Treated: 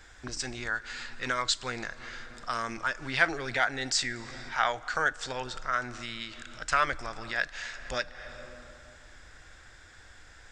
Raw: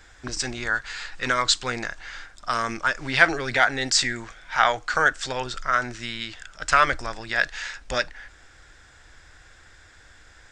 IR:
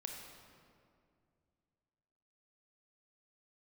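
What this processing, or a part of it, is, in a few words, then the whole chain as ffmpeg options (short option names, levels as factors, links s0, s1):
ducked reverb: -filter_complex "[0:a]asplit=3[s0][s1][s2];[1:a]atrim=start_sample=2205[s3];[s1][s3]afir=irnorm=-1:irlink=0[s4];[s2]apad=whole_len=463640[s5];[s4][s5]sidechaincompress=threshold=0.01:ratio=10:attack=8.9:release=189,volume=1.58[s6];[s0][s6]amix=inputs=2:normalize=0,volume=0.398"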